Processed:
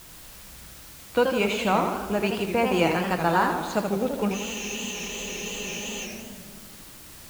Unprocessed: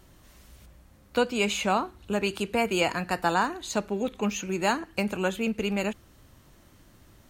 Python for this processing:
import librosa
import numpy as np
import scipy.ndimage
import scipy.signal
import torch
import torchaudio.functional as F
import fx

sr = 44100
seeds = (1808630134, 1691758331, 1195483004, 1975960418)

p1 = fx.lowpass(x, sr, hz=2400.0, slope=6)
p2 = fx.quant_dither(p1, sr, seeds[0], bits=6, dither='triangular')
p3 = p1 + (p2 * 10.0 ** (-11.5 / 20.0))
p4 = fx.room_shoebox(p3, sr, seeds[1], volume_m3=2100.0, walls='mixed', distance_m=0.62)
p5 = fx.spec_freeze(p4, sr, seeds[2], at_s=4.37, hold_s=1.68)
y = fx.echo_warbled(p5, sr, ms=82, feedback_pct=59, rate_hz=2.8, cents=178, wet_db=-6)